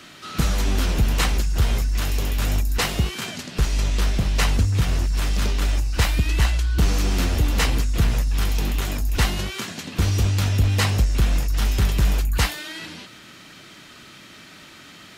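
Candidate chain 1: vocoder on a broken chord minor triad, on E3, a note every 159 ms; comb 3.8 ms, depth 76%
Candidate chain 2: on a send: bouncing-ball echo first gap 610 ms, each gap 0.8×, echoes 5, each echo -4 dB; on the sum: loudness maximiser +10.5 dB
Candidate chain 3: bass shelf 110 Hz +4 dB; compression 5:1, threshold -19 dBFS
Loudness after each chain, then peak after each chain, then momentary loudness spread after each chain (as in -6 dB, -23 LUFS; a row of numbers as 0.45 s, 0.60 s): -27.5 LUFS, -11.5 LUFS, -25.0 LUFS; -10.0 dBFS, -1.0 dBFS, -10.0 dBFS; 20 LU, 9 LU, 19 LU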